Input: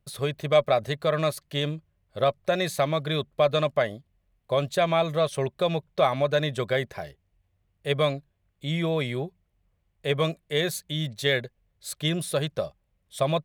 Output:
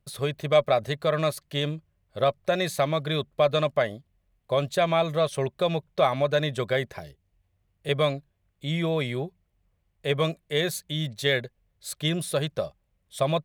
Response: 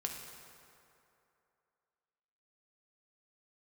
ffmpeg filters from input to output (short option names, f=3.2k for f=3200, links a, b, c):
-filter_complex "[0:a]asettb=1/sr,asplit=3[a][b][c];[a]atrim=end=6.994[d];[b]atrim=start=6.99:end=7.89,asetpts=PTS-STARTPTS,afade=t=in:d=0.004:c=qsin,afade=t=out:st=0.896:d=0.004:c=qsin,acrossover=split=440|3000[e][f][g];[f]acompressor=threshold=-51dB:ratio=2.5[h];[e][h][g]amix=inputs=3:normalize=0[i];[c]atrim=start=7.886[j];[d][i]acrossfade=d=0.004:c1=hsin:c2=qsin[k];[k][j]acrossfade=d=0.004:c1=qsin:c2=hsin"